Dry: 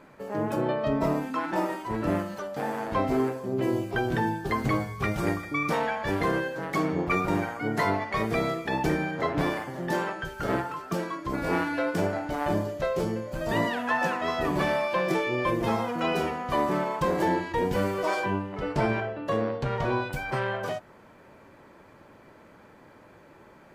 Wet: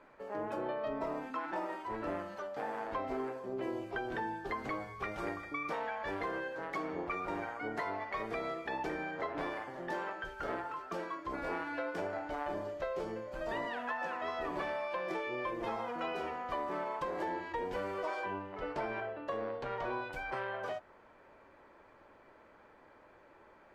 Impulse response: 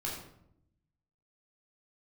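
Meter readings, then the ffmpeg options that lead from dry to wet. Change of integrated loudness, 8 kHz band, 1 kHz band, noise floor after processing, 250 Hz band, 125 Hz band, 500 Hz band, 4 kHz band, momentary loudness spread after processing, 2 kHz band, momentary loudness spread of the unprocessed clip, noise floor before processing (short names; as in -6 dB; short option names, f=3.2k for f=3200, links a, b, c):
-10.5 dB, under -15 dB, -8.5 dB, -61 dBFS, -14.0 dB, -20.0 dB, -10.0 dB, -12.0 dB, 3 LU, -9.0 dB, 5 LU, -53 dBFS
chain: -filter_complex "[0:a]acrossover=split=170[a][b];[a]asoftclip=type=tanh:threshold=-36.5dB[c];[c][b]amix=inputs=2:normalize=0,equalizer=f=150:t=o:w=2:g=-13.5,acompressor=threshold=-29dB:ratio=6,aemphasis=mode=reproduction:type=75kf,volume=-3.5dB"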